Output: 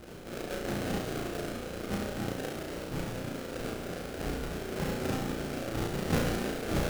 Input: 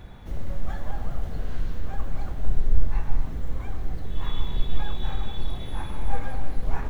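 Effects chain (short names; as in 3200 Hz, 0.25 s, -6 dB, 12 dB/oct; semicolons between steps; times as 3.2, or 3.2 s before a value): Butterworth band-pass 750 Hz, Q 0.65; sample-rate reducer 1000 Hz, jitter 20%; flutter echo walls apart 5.9 m, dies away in 0.59 s; gain +7.5 dB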